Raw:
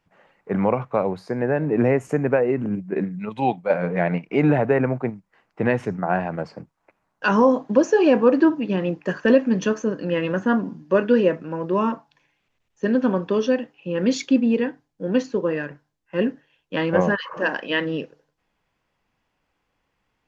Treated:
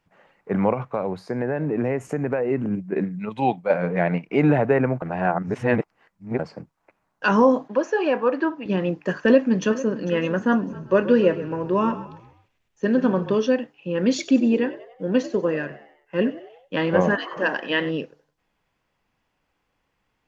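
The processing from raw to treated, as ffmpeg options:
-filter_complex "[0:a]asplit=3[s0][s1][s2];[s0]afade=t=out:st=0.72:d=0.02[s3];[s1]acompressor=threshold=0.0891:ratio=2.5:attack=3.2:release=140:knee=1:detection=peak,afade=t=in:st=0.72:d=0.02,afade=t=out:st=2.5:d=0.02[s4];[s2]afade=t=in:st=2.5:d=0.02[s5];[s3][s4][s5]amix=inputs=3:normalize=0,asettb=1/sr,asplit=3[s6][s7][s8];[s6]atrim=end=7.684[s9];[s7]atrim=start=7.68:end=8.66,asetpts=PTS-STARTPTS,afade=t=in:d=0.004:c=qsin,afade=t=out:st=0.976:d=0.004:c=qsin,bandpass=f=1400:t=q:w=0.56[s10];[s8]atrim=start=8.656[s11];[s9][s10]acrossfade=d=0.004:c1=hsin:c2=qsin[s12];[s12][s11]acrossfade=d=0.004:c1=qsin:c2=hsin,asplit=2[s13][s14];[s14]afade=t=in:st=9.21:d=0.01,afade=t=out:st=10.11:d=0.01,aecho=0:1:450|900|1350|1800:0.16788|0.0671522|0.0268609|0.0107443[s15];[s13][s15]amix=inputs=2:normalize=0,asplit=3[s16][s17][s18];[s16]afade=t=out:st=10.69:d=0.02[s19];[s17]asplit=5[s20][s21][s22][s23][s24];[s21]adelay=129,afreqshift=-33,volume=0.211[s25];[s22]adelay=258,afreqshift=-66,volume=0.0871[s26];[s23]adelay=387,afreqshift=-99,volume=0.0355[s27];[s24]adelay=516,afreqshift=-132,volume=0.0146[s28];[s20][s25][s26][s27][s28]amix=inputs=5:normalize=0,afade=t=in:st=10.69:d=0.02,afade=t=out:st=13.34:d=0.02[s29];[s18]afade=t=in:st=13.34:d=0.02[s30];[s19][s29][s30]amix=inputs=3:normalize=0,asettb=1/sr,asplit=3[s31][s32][s33];[s31]atrim=end=14.094[s34];[s32]atrim=start=14.09:end=17.91,asetpts=PTS-STARTPTS,afade=t=in:d=0.004:c=qsin,afade=t=out:st=3.816:d=0.004:c=qsin,asplit=5[s35][s36][s37][s38][s39];[s36]adelay=94,afreqshift=72,volume=0.15[s40];[s37]adelay=188,afreqshift=144,volume=0.0733[s41];[s38]adelay=282,afreqshift=216,volume=0.0359[s42];[s39]adelay=376,afreqshift=288,volume=0.0176[s43];[s35][s40][s41][s42][s43]amix=inputs=5:normalize=0,atrim=end_sample=168462[s44];[s33]atrim=start=17.906[s45];[s34][s44]acrossfade=d=0.004:c1=hsin:c2=qsin[s46];[s46][s45]acrossfade=d=0.004:c1=qsin:c2=hsin,asplit=3[s47][s48][s49];[s47]atrim=end=5.022[s50];[s48]atrim=start=5.018:end=6.392,asetpts=PTS-STARTPTS,areverse[s51];[s49]atrim=start=6.388[s52];[s50][s51]acrossfade=d=0.004:c1=hsin:c2=hsin[s53];[s53][s52]acrossfade=d=0.004:c1=hsin:c2=hsin"

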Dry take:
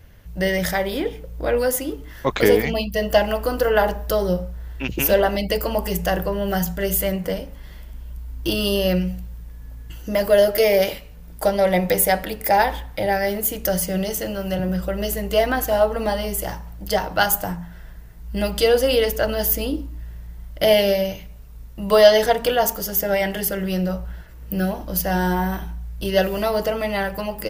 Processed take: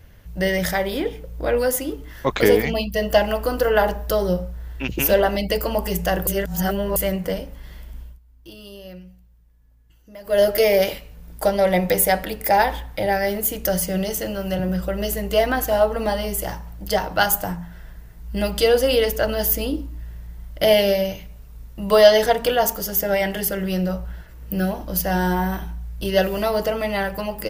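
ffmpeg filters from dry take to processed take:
-filter_complex "[0:a]asplit=5[s0][s1][s2][s3][s4];[s0]atrim=end=6.272[s5];[s1]atrim=start=6.268:end=6.962,asetpts=PTS-STARTPTS,areverse[s6];[s2]atrim=start=6.958:end=8.19,asetpts=PTS-STARTPTS,afade=t=out:st=1.042:d=0.19:silence=0.105925[s7];[s3]atrim=start=8.19:end=10.24,asetpts=PTS-STARTPTS,volume=0.106[s8];[s4]atrim=start=10.24,asetpts=PTS-STARTPTS,afade=t=in:d=0.19:silence=0.105925[s9];[s5][s6]acrossfade=d=0.004:c1=hsin:c2=hsin[s10];[s7][s8][s9]concat=n=3:v=0:a=1[s11];[s10][s11]acrossfade=d=0.004:c1=hsin:c2=hsin"

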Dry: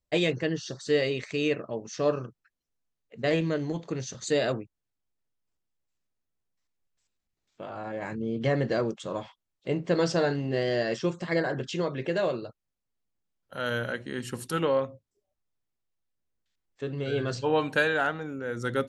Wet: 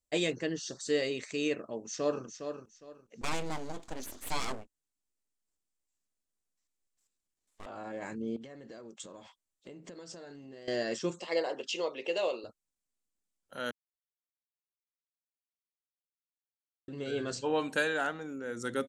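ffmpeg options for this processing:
-filter_complex "[0:a]asplit=2[s0][s1];[s1]afade=t=in:st=1.69:d=0.01,afade=t=out:st=2.24:d=0.01,aecho=0:1:410|820|1230:0.398107|0.0995268|0.0248817[s2];[s0][s2]amix=inputs=2:normalize=0,asettb=1/sr,asplit=3[s3][s4][s5];[s3]atrim=end=3.214[s6];[s4]atrim=start=3.21:end=7.66,asetpts=PTS-STARTPTS,afade=t=in:d=0.004:c=qsin,afade=t=out:st=4.446:d=0.004:c=qsin,aeval=exprs='abs(val(0))':c=same[s7];[s5]atrim=start=7.656[s8];[s6][s7]acrossfade=d=0.004:c1=hsin:c2=qsin[s9];[s9][s8]acrossfade=d=0.004:c1=qsin:c2=hsin,asettb=1/sr,asplit=3[s10][s11][s12];[s10]atrim=end=8.364[s13];[s11]atrim=start=8.36:end=10.68,asetpts=PTS-STARTPTS,afade=t=in:d=0.004:c=qsin,afade=t=out:st=2.316:d=0.004:c=qsin,acompressor=threshold=0.0112:ratio=10:attack=3.2:release=140:knee=1:detection=peak[s14];[s12]atrim=start=10.676[s15];[s13][s14]acrossfade=d=0.004:c1=hsin:c2=qsin[s16];[s16][s15]acrossfade=d=0.004:c1=qsin:c2=hsin,asettb=1/sr,asplit=3[s17][s18][s19];[s17]atrim=end=11.204[s20];[s18]atrim=start=11.2:end=12.44,asetpts=PTS-STARTPTS,afade=t=in:d=0.004:c=qsin,afade=t=out:st=1.236:d=0.004:c=qsin,highpass=430,equalizer=f=490:t=q:w=4:g=6,equalizer=f=870:t=q:w=4:g=5,equalizer=f=1600:t=q:w=4:g=-10,equalizer=f=2800:t=q:w=4:g=10,equalizer=f=4900:t=q:w=4:g=4,equalizer=f=7400:t=q:w=4:g=-4,lowpass=f=8600:w=0.5412,lowpass=f=8600:w=1.3066[s21];[s19]atrim=start=12.436[s22];[s20][s21]acrossfade=d=0.004:c1=hsin:c2=qsin[s23];[s23][s22]acrossfade=d=0.004:c1=qsin:c2=hsin,asplit=3[s24][s25][s26];[s24]atrim=end=13.71,asetpts=PTS-STARTPTS,afade=t=out:st=13.706:d=0.004:c=hsin[s27];[s25]atrim=start=13.71:end=16.88,asetpts=PTS-STARTPTS,volume=0[s28];[s26]atrim=start=16.88,asetpts=PTS-STARTPTS,afade=t=in:d=0.004:c=hsin[s29];[s27][s28][s29]concat=n=3:v=0:a=1,equalizer=f=125:t=o:w=1:g=-8,equalizer=f=250:t=o:w=1:g=4,equalizer=f=8000:t=o:w=1:g=12,volume=0.501"

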